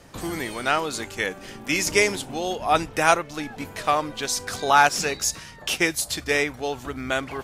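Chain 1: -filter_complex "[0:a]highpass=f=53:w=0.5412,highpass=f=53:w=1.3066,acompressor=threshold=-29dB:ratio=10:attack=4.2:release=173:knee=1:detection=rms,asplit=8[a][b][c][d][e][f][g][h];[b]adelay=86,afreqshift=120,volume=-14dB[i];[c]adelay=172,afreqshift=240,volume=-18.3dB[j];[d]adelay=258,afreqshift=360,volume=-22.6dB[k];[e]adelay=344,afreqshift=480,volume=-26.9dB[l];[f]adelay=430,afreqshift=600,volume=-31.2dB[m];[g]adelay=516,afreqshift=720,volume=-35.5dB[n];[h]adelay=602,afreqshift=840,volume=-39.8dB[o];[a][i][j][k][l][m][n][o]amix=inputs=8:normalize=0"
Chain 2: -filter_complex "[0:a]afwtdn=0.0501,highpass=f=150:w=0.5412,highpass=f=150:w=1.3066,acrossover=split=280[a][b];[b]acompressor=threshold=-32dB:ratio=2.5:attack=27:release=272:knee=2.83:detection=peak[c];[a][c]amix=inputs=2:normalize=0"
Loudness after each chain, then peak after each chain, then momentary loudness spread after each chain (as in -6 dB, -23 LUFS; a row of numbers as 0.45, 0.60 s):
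-35.0, -32.0 LUFS; -16.5, -13.5 dBFS; 3, 10 LU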